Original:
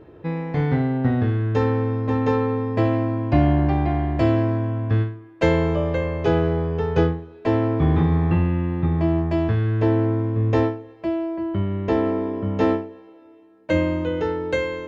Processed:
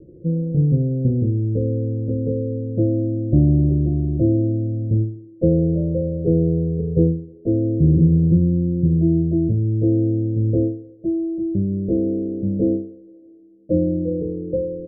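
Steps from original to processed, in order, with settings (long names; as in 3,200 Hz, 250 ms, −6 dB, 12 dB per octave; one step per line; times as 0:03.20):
Butterworth low-pass 550 Hz 72 dB per octave
parametric band 430 Hz −5.5 dB 0.99 octaves
comb filter 5.7 ms, depth 45%
level +4 dB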